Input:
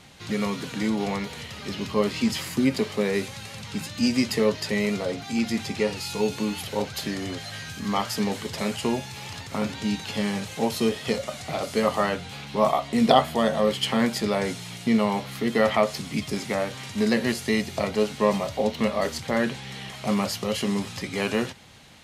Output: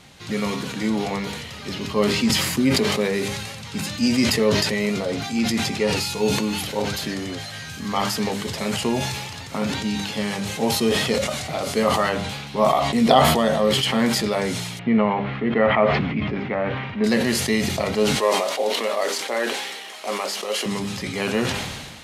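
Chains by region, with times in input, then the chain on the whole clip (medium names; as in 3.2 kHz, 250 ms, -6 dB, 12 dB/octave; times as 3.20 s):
14.79–17.04 s: low-pass 2.5 kHz 24 dB/octave + upward compressor, threshold -31 dBFS
18.16–20.66 s: CVSD coder 64 kbps + high-pass 340 Hz 24 dB/octave
whole clip: de-hum 100.9 Hz, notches 32; decay stretcher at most 36 dB/s; trim +2 dB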